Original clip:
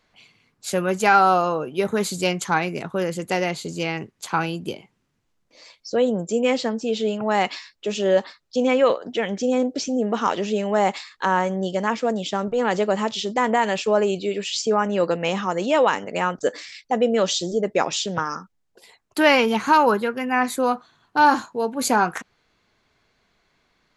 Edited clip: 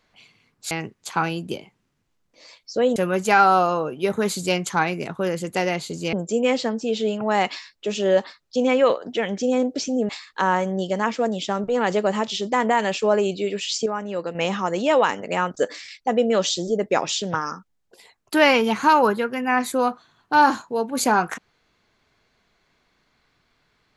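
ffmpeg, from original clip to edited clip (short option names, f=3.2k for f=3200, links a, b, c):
-filter_complex "[0:a]asplit=7[a][b][c][d][e][f][g];[a]atrim=end=0.712[h];[b]atrim=start=3.878:end=6.132[i];[c]atrim=start=0.708:end=3.882[j];[d]atrim=start=6.128:end=10.092[k];[e]atrim=start=10.928:end=14.702[l];[f]atrim=start=14.698:end=15.192,asetpts=PTS-STARTPTS,volume=-7dB[m];[g]atrim=start=15.188[n];[h][i]acrossfade=d=0.004:c1=hsin:c2=hsin[o];[o][j]acrossfade=d=0.004:c1=hsin:c2=hsin[p];[p][k]acrossfade=d=0.004:c1=hsin:c2=hsin[q];[q][l]acrossfade=d=0.004:c1=hsin:c2=hsin[r];[r][m]acrossfade=d=0.004:c1=hsin:c2=hsin[s];[s][n]acrossfade=d=0.004:c1=hsin:c2=hsin"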